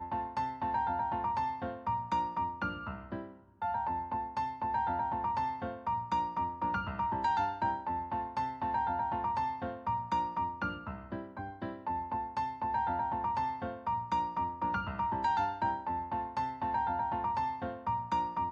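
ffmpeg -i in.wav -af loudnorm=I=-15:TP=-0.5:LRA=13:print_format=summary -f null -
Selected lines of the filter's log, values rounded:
Input Integrated:    -34.5 LUFS
Input True Peak:     -20.8 dBTP
Input LRA:             2.1 LU
Input Threshold:     -44.5 LUFS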